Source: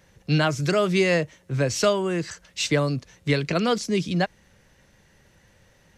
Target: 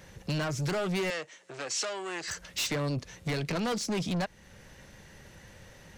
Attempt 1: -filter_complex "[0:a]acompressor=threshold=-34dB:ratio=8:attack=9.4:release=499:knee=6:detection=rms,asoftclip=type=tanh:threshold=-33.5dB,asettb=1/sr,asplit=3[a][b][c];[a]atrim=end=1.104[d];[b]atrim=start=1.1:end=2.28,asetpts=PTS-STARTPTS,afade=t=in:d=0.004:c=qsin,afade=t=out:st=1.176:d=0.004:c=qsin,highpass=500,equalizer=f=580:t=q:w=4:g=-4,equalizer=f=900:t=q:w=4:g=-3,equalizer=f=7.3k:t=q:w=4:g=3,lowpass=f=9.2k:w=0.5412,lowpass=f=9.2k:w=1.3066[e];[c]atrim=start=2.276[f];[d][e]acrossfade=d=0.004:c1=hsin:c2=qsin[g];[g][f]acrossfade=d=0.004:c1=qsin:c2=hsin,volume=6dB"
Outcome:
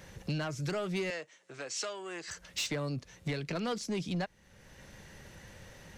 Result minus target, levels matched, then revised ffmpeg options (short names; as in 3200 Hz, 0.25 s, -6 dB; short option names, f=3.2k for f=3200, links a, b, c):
compressor: peak gain reduction +8.5 dB
-filter_complex "[0:a]acompressor=threshold=-24.5dB:ratio=8:attack=9.4:release=499:knee=6:detection=rms,asoftclip=type=tanh:threshold=-33.5dB,asettb=1/sr,asplit=3[a][b][c];[a]atrim=end=1.104[d];[b]atrim=start=1.1:end=2.28,asetpts=PTS-STARTPTS,afade=t=in:d=0.004:c=qsin,afade=t=out:st=1.176:d=0.004:c=qsin,highpass=500,equalizer=f=580:t=q:w=4:g=-4,equalizer=f=900:t=q:w=4:g=-3,equalizer=f=7.3k:t=q:w=4:g=3,lowpass=f=9.2k:w=0.5412,lowpass=f=9.2k:w=1.3066[e];[c]atrim=start=2.276[f];[d][e]acrossfade=d=0.004:c1=hsin:c2=qsin[g];[g][f]acrossfade=d=0.004:c1=qsin:c2=hsin,volume=6dB"